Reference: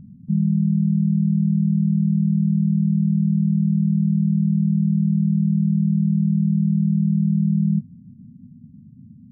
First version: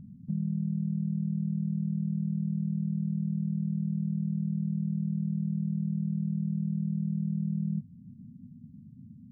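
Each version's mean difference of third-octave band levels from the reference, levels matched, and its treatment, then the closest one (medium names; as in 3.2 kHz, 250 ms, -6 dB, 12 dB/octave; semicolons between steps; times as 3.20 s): 3.5 dB: dynamic bell 280 Hz, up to -5 dB, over -34 dBFS, Q 0.71; compressor with a negative ratio -24 dBFS, ratio -1; trim -6.5 dB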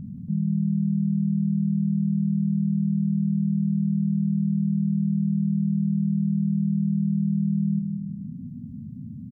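2.0 dB: feedback delay 180 ms, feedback 38%, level -11 dB; level flattener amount 50%; trim -7 dB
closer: second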